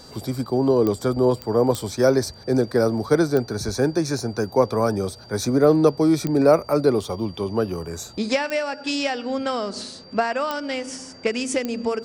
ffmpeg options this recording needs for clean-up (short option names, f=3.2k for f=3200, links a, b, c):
-af "adeclick=t=4,bandreject=f=4.7k:w=30"